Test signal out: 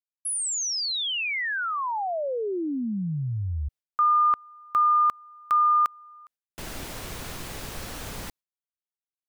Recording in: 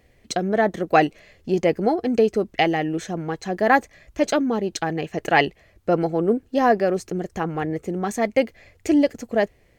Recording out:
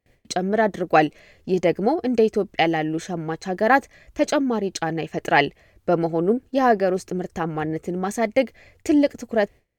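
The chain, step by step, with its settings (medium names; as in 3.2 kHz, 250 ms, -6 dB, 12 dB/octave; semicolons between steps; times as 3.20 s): gate with hold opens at -46 dBFS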